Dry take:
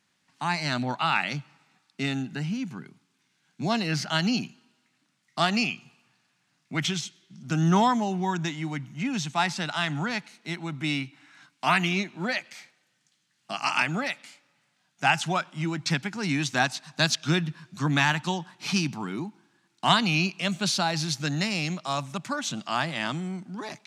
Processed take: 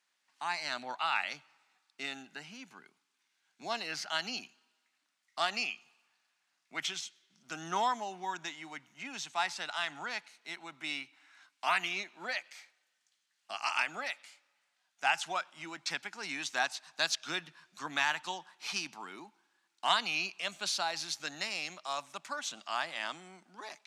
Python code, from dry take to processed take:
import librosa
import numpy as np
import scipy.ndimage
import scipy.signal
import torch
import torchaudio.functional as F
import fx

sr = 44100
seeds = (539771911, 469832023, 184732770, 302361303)

y = scipy.signal.sosfilt(scipy.signal.butter(2, 570.0, 'highpass', fs=sr, output='sos'), x)
y = y * librosa.db_to_amplitude(-6.5)